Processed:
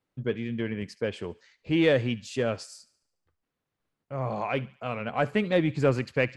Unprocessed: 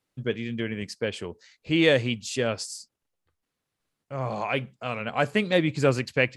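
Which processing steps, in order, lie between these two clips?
treble shelf 3.2 kHz -11.5 dB; in parallel at -8.5 dB: saturation -23 dBFS, distortion -9 dB; on the sum: feedback echo behind a high-pass 72 ms, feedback 50%, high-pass 1.4 kHz, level -19 dB; trim -2.5 dB

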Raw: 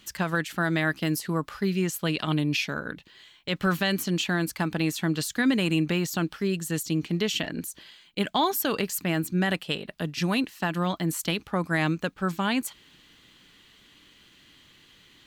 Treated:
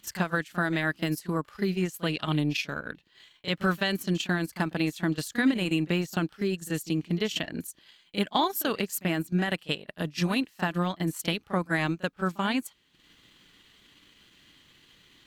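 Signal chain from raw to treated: pre-echo 34 ms -12 dB; transient shaper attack +3 dB, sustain -10 dB; trim -2.5 dB

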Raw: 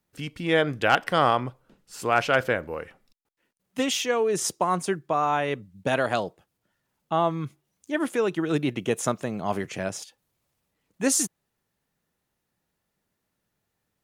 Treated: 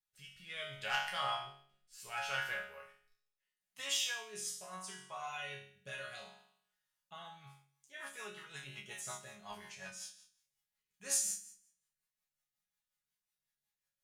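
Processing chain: amplifier tone stack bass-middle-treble 10-0-10; chord resonator C#3 sus4, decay 0.62 s; rotary cabinet horn 0.7 Hz, later 5.5 Hz, at 7.11 s; trim +13 dB

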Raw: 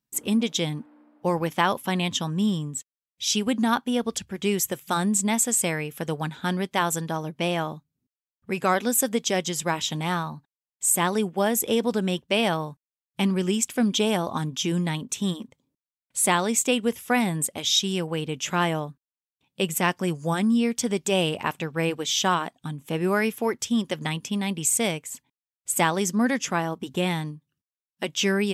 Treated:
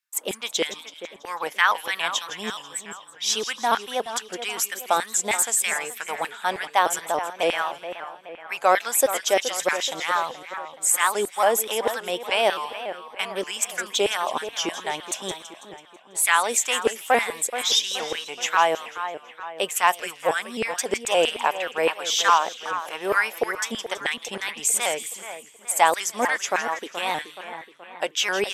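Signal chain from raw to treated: LFO high-pass saw down 3.2 Hz 440–2100 Hz; two-band feedback delay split 2.8 kHz, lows 425 ms, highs 164 ms, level -11 dB; vibrato with a chosen wave saw up 3.5 Hz, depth 100 cents; trim +1 dB

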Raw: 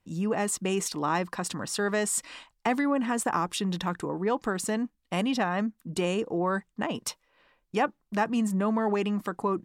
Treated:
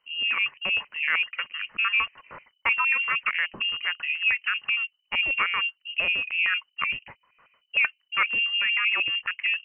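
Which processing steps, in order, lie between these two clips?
LFO low-pass square 6.5 Hz 590–1900 Hz; frequency inversion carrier 3 kHz

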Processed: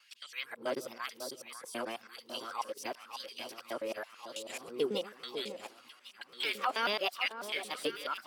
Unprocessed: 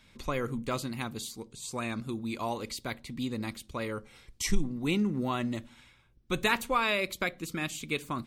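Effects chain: time reversed locally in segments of 109 ms; de-esser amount 85%; LFO high-pass sine 0.98 Hz 310–2800 Hz; formant shift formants +4 st; on a send: echo whose repeats swap between lows and highs 548 ms, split 1.4 kHz, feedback 77%, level -9 dB; on the sum: trim -4.5 dB

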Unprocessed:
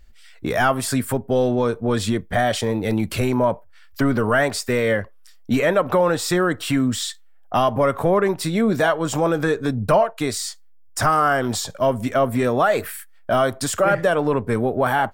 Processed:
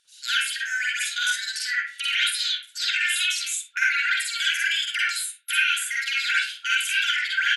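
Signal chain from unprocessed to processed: FFT band-pass 690–5800 Hz; compression, threshold -25 dBFS, peak gain reduction 10.5 dB; delay 115 ms -15.5 dB; plate-style reverb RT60 0.71 s, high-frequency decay 0.35×, pre-delay 80 ms, DRR -4.5 dB; speed mistake 7.5 ips tape played at 15 ips

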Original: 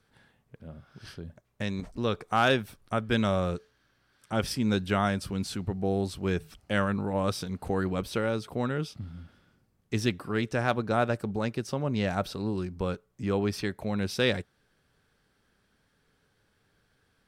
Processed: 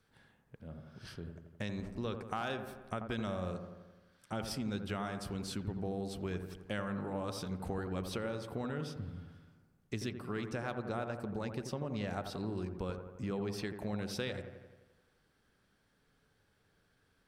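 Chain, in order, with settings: compression, threshold -31 dBFS, peak gain reduction 11.5 dB; on a send: feedback echo behind a low-pass 86 ms, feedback 61%, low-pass 1.5 kHz, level -7 dB; on the sum: trim -4 dB

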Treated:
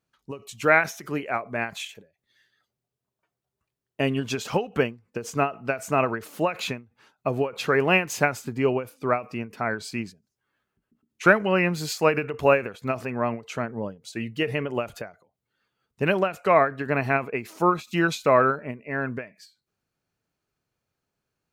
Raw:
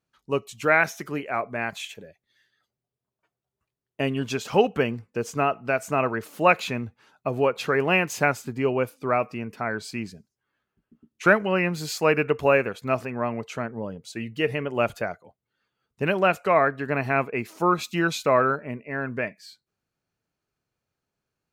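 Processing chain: endings held to a fixed fall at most 200 dB/s; trim +1.5 dB

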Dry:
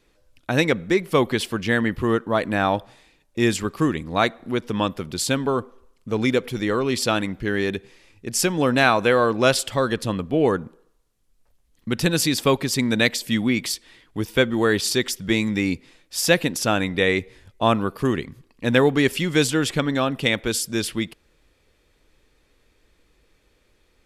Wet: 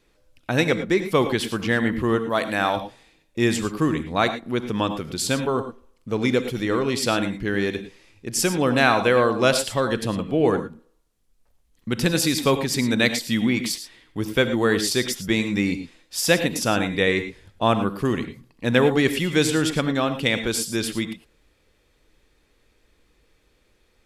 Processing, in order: 2.29–2.77 s: tilt EQ +2 dB/octave; gated-style reverb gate 130 ms rising, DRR 9.5 dB; trim -1 dB

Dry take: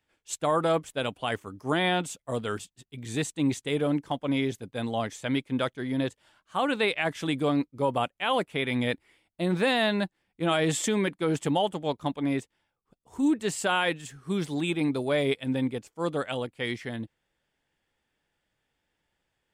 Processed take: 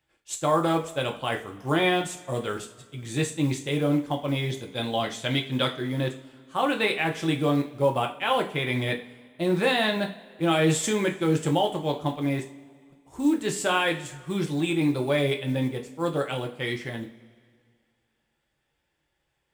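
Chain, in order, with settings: 4.50–5.79 s: peaking EQ 3.6 kHz +8.5 dB 0.9 oct; short-mantissa float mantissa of 4-bit; reverberation, pre-delay 3 ms, DRR 2 dB

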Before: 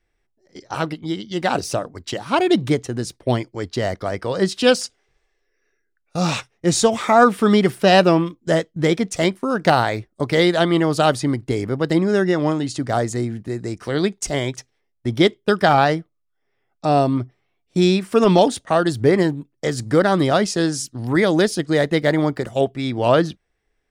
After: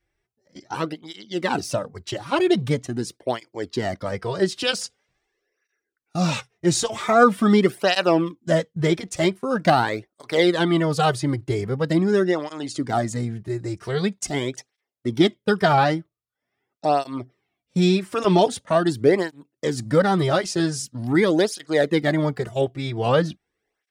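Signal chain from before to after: cancelling through-zero flanger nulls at 0.44 Hz, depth 4.7 ms

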